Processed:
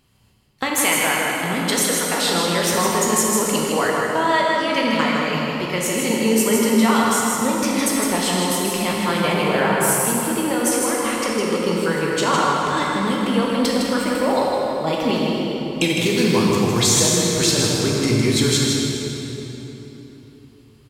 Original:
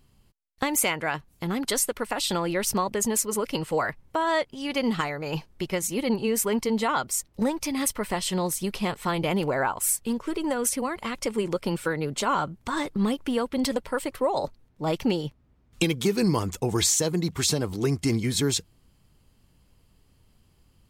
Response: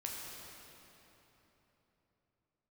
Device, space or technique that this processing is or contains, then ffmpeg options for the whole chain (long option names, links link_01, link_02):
PA in a hall: -filter_complex "[0:a]highpass=frequency=100:poles=1,equalizer=frequency=2800:width_type=o:width=2.2:gain=4,aecho=1:1:158:0.562[link_01];[1:a]atrim=start_sample=2205[link_02];[link_01][link_02]afir=irnorm=-1:irlink=0,volume=5.5dB"